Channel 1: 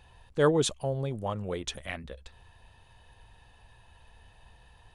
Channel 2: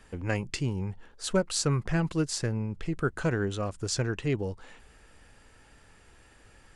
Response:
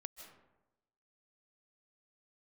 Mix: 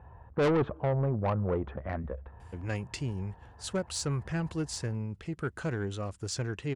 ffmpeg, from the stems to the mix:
-filter_complex "[0:a]lowpass=frequency=1400:width=0.5412,lowpass=frequency=1400:width=1.3066,acontrast=42,volume=0dB,asplit=2[link_01][link_02];[link_02]volume=-22.5dB[link_03];[1:a]adelay=2400,volume=-4.5dB[link_04];[2:a]atrim=start_sample=2205[link_05];[link_03][link_05]afir=irnorm=-1:irlink=0[link_06];[link_01][link_04][link_06]amix=inputs=3:normalize=0,highpass=59,equalizer=frequency=77:width_type=o:width=1.1:gain=4.5,asoftclip=type=tanh:threshold=-22.5dB"

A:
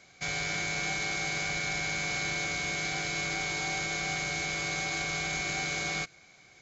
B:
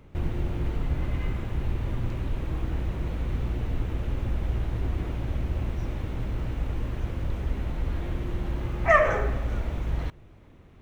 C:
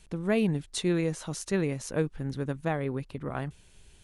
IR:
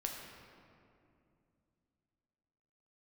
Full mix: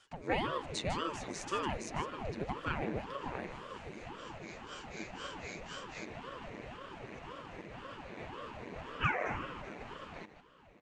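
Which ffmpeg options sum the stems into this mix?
-filter_complex "[0:a]tremolo=f=4:d=0.94,volume=-8.5dB[link_01];[1:a]acompressor=threshold=-29dB:ratio=3,adelay=150,volume=1.5dB,asplit=2[link_02][link_03];[link_03]volume=-12dB[link_04];[2:a]volume=-0.5dB,asplit=3[link_05][link_06][link_07];[link_06]volume=-10dB[link_08];[link_07]apad=whole_len=291552[link_09];[link_01][link_09]sidechaincompress=threshold=-47dB:ratio=8:attack=16:release=1140[link_10];[link_04][link_08]amix=inputs=2:normalize=0,aecho=0:1:153:1[link_11];[link_10][link_02][link_05][link_11]amix=inputs=4:normalize=0,highpass=frequency=250:width=0.5412,highpass=frequency=250:width=1.3066,equalizer=frequency=410:width_type=q:width=4:gain=-6,equalizer=frequency=740:width_type=q:width=4:gain=-5,equalizer=frequency=1300:width_type=q:width=4:gain=-8,equalizer=frequency=2300:width_type=q:width=4:gain=4,equalizer=frequency=3200:width_type=q:width=4:gain=-8,equalizer=frequency=5300:width_type=q:width=4:gain=-5,lowpass=frequency=7000:width=0.5412,lowpass=frequency=7000:width=1.3066,aecho=1:1:7.5:0.5,aeval=exprs='val(0)*sin(2*PI*440*n/s+440*0.9/1.9*sin(2*PI*1.9*n/s))':channel_layout=same"

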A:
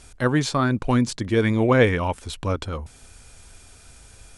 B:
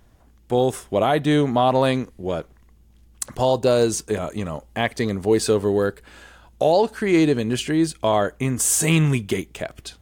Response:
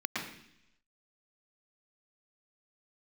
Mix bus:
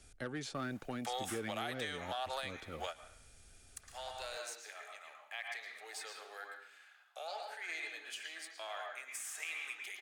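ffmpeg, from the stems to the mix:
-filter_complex "[0:a]asoftclip=type=tanh:threshold=-14dB,volume=-12.5dB,asplit=2[link_01][link_02];[1:a]aeval=exprs='if(lt(val(0),0),0.708*val(0),val(0))':channel_layout=same,highpass=frequency=850:width=0.5412,highpass=frequency=850:width=1.3066,adelay=550,volume=2dB,asplit=2[link_03][link_04];[link_04]volume=-22dB[link_05];[link_02]apad=whole_len=465954[link_06];[link_03][link_06]sidechaingate=range=-23dB:threshold=-52dB:ratio=16:detection=peak[link_07];[2:a]atrim=start_sample=2205[link_08];[link_05][link_08]afir=irnorm=-1:irlink=0[link_09];[link_01][link_07][link_09]amix=inputs=3:normalize=0,acrossover=split=150|390|2900[link_10][link_11][link_12][link_13];[link_10]acompressor=threshold=-57dB:ratio=4[link_14];[link_11]acompressor=threshold=-43dB:ratio=4[link_15];[link_12]acompressor=threshold=-36dB:ratio=4[link_16];[link_13]acompressor=threshold=-44dB:ratio=4[link_17];[link_14][link_15][link_16][link_17]amix=inputs=4:normalize=0,equalizer=frequency=1000:width=6.9:gain=-14,alimiter=level_in=4.5dB:limit=-24dB:level=0:latency=1:release=365,volume=-4.5dB"

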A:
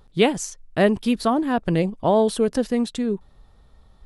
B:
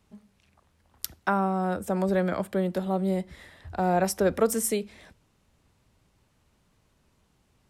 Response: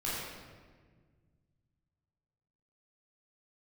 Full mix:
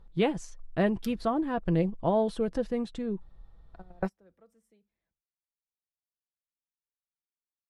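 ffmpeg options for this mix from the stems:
-filter_complex "[0:a]volume=-8dB,asplit=2[link_01][link_02];[1:a]agate=range=-17dB:threshold=-59dB:ratio=16:detection=peak,volume=-3.5dB,asplit=3[link_03][link_04][link_05];[link_03]atrim=end=1.26,asetpts=PTS-STARTPTS,afade=type=out:start_time=1.256:duration=0.004:curve=hsin[link_06];[link_04]atrim=start=1.26:end=3.57,asetpts=PTS-STARTPTS,volume=0[link_07];[link_05]atrim=start=3.57,asetpts=PTS-STARTPTS,afade=type=in:duration=0.004:curve=hsin[link_08];[link_06][link_07][link_08]concat=n=3:v=0:a=1[link_09];[link_02]apad=whole_len=339392[link_10];[link_09][link_10]sidechaingate=range=-34dB:threshold=-53dB:ratio=16:detection=peak[link_11];[link_01][link_11]amix=inputs=2:normalize=0,lowpass=frequency=2200:poles=1,lowshelf=frequency=67:gain=9,aecho=1:1:6:0.35"

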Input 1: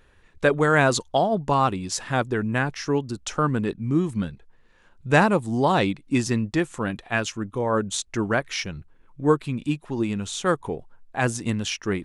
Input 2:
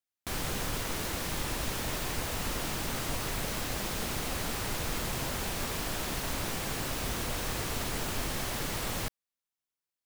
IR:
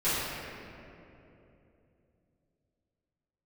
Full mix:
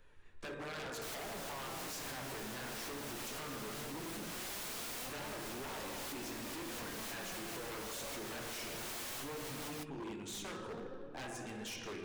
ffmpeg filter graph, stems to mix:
-filter_complex "[0:a]acompressor=threshold=-31dB:ratio=4,volume=-6dB,asplit=3[link_01][link_02][link_03];[link_02]volume=-12.5dB[link_04];[1:a]adelay=750,volume=2dB[link_05];[link_03]apad=whole_len=476382[link_06];[link_05][link_06]sidechaincompress=threshold=-44dB:ratio=8:attack=36:release=334[link_07];[2:a]atrim=start_sample=2205[link_08];[link_04][link_08]afir=irnorm=-1:irlink=0[link_09];[link_01][link_07][link_09]amix=inputs=3:normalize=0,acrossover=split=240|3000[link_10][link_11][link_12];[link_10]acompressor=threshold=-47dB:ratio=6[link_13];[link_13][link_11][link_12]amix=inputs=3:normalize=0,flanger=delay=1.9:depth=7:regen=67:speed=0.17:shape=triangular,aeval=exprs='0.0119*(abs(mod(val(0)/0.0119+3,4)-2)-1)':channel_layout=same"

